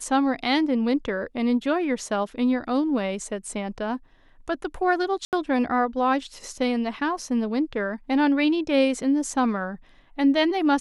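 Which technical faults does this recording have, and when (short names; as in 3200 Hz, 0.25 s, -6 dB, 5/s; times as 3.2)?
5.25–5.33 gap 78 ms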